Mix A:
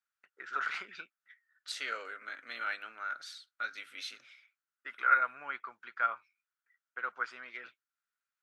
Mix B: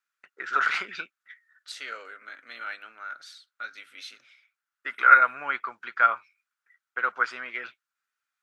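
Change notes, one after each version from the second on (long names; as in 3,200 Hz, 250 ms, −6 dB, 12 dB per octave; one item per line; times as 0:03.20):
first voice +10.5 dB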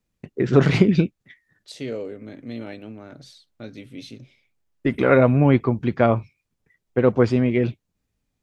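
first voice +5.5 dB
master: remove high-pass with resonance 1,400 Hz, resonance Q 7.1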